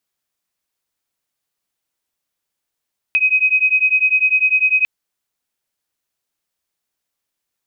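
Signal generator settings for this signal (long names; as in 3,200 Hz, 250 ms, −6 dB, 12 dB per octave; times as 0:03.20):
two tones that beat 2,520 Hz, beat 10 Hz, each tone −15 dBFS 1.70 s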